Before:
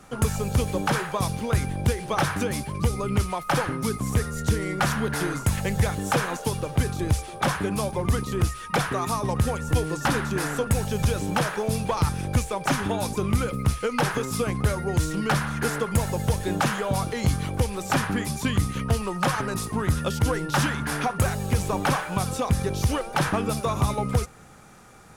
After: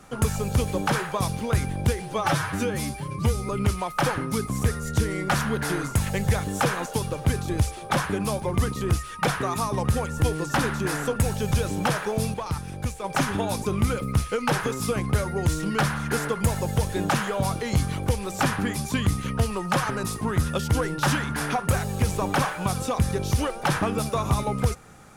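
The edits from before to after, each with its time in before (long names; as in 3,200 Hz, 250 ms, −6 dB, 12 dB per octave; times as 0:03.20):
0:02.02–0:03.00: time-stretch 1.5×
0:11.85–0:12.55: clip gain −6 dB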